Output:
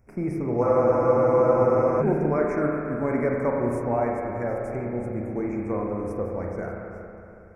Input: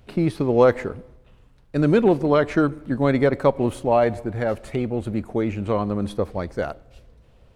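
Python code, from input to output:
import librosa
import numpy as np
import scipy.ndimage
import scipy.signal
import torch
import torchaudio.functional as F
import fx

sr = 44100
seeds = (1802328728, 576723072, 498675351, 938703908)

y = scipy.signal.sosfilt(scipy.signal.ellip(3, 1.0, 40, [2300.0, 5300.0], 'bandstop', fs=sr, output='sos'), x)
y = fx.rev_spring(y, sr, rt60_s=2.9, pass_ms=(33, 46), chirp_ms=45, drr_db=-1.5)
y = fx.spec_freeze(y, sr, seeds[0], at_s=0.64, hold_s=1.37)
y = y * 10.0 ** (-8.0 / 20.0)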